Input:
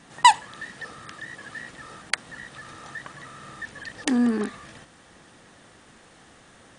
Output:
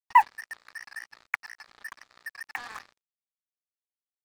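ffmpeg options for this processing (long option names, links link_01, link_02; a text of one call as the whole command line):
ffmpeg -i in.wav -af "asuperpass=centerf=1400:order=20:qfactor=0.75,acrusher=bits=5:mix=0:aa=0.5,atempo=1.6,volume=-2dB" out.wav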